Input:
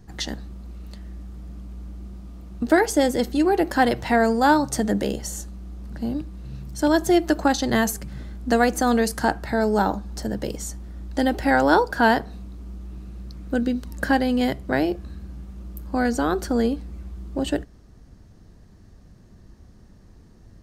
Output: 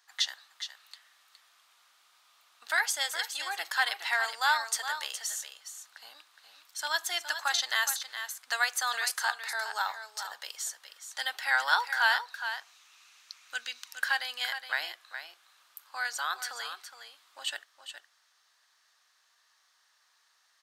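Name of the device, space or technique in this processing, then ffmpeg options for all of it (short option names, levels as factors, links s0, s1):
headphones lying on a table: -filter_complex "[0:a]highpass=f=1100:w=0.5412,highpass=f=1100:w=1.3066,equalizer=f=3600:t=o:w=0.58:g=5.5,asettb=1/sr,asplit=3[s0][s1][s2];[s0]atrim=end=12.344[s3];[s1]atrim=start=12.34:end=13.98,asetpts=PTS-STARTPTS,afade=t=in:d=0.004:c=qsin,afade=t=out:st=1.636:d=0.004:c=qsin,equalizer=f=160:t=o:w=0.67:g=9,equalizer=f=630:t=o:w=0.67:g=-3,equalizer=f=2500:t=o:w=0.67:g=7,equalizer=f=6300:t=o:w=0.67:g=9[s4];[s2]atrim=start=13.976[s5];[s3][s4]acrossfade=d=0.004:c1=hsin:c2=qsin[s6];[s6][s5]acrossfade=d=0.004:c1=qsin:c2=hsin,aecho=1:1:416:0.335,volume=0.794"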